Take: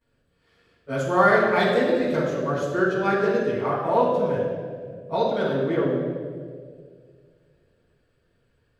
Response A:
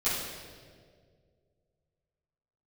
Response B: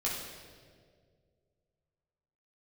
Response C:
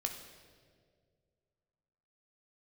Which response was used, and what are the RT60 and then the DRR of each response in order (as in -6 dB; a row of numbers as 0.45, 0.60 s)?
A; 2.0, 2.0, 2.0 s; -16.0, -6.5, 3.0 dB